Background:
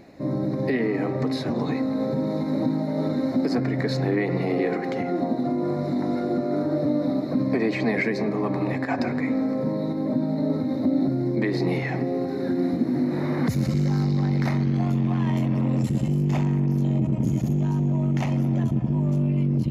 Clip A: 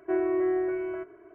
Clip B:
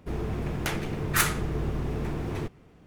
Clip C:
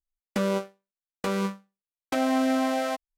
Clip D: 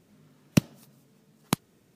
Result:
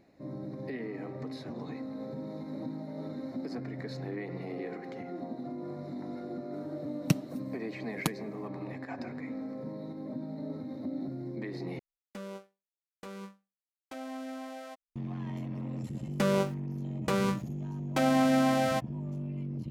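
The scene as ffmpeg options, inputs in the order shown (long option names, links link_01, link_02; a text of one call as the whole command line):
ffmpeg -i bed.wav -i cue0.wav -i cue1.wav -i cue2.wav -i cue3.wav -filter_complex "[3:a]asplit=2[link_01][link_02];[0:a]volume=-14.5dB[link_03];[4:a]aecho=1:1:6.5:0.51[link_04];[link_02]aeval=exprs='val(0)*gte(abs(val(0)),0.00316)':channel_layout=same[link_05];[link_03]asplit=2[link_06][link_07];[link_06]atrim=end=11.794[link_08];[link_01]atrim=end=3.17,asetpts=PTS-STARTPTS,volume=-16.5dB[link_09];[link_07]atrim=start=14.956[link_10];[link_04]atrim=end=1.95,asetpts=PTS-STARTPTS,volume=-6dB,afade=type=in:duration=0.004:curve=hsin,afade=type=out:start_time=1.946:duration=0.004:curve=hsin,adelay=6530[link_11];[link_05]atrim=end=3.17,asetpts=PTS-STARTPTS,volume=-1dB,afade=type=in:duration=0.004:curve=hsin,afade=type=out:start_time=3.166:duration=0.004:curve=hsin,adelay=15840[link_12];[link_08][link_09]acrossfade=duration=0.004:curve1=hsin:curve2=hsin[link_13];[link_13][link_10]acrossfade=duration=0.004:curve1=hsin:curve2=hsin[link_14];[link_14][link_11][link_12]amix=inputs=3:normalize=0" out.wav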